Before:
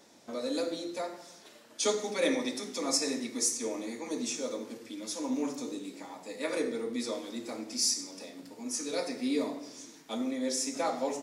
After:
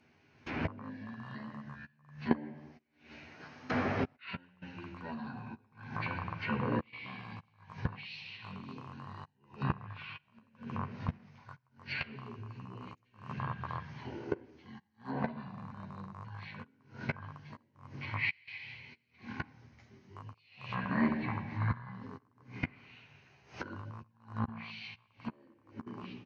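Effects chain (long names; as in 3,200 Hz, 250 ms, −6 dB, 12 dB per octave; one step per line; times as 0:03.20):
loose part that buzzes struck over −44 dBFS, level −28 dBFS
notch filter 410 Hz, Q 12
single-tap delay 250 ms −22 dB
gate pattern ".xxx.x..x.xx...x" 76 BPM −24 dB
brickwall limiter −26.5 dBFS, peak gain reduction 10 dB
parametric band 8,000 Hz −9 dB 0.44 octaves
gate with flip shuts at −45 dBFS, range −34 dB
low-shelf EQ 160 Hz −8.5 dB
comb filter 5.3 ms, depth 42%
wrong playback speed 78 rpm record played at 33 rpm
treble cut that deepens with the level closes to 2,500 Hz, closed at −60.5 dBFS
automatic gain control gain up to 10 dB
level +16.5 dB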